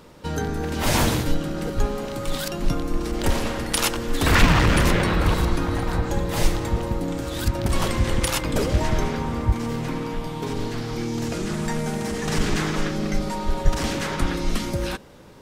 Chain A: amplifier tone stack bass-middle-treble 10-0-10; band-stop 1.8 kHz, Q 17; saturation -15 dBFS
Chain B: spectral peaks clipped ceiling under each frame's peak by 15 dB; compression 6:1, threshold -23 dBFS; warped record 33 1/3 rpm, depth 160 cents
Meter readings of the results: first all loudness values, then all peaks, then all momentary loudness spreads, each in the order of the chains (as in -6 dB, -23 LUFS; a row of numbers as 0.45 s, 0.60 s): -32.5 LUFS, -27.5 LUFS; -15.0 dBFS, -9.5 dBFS; 13 LU, 4 LU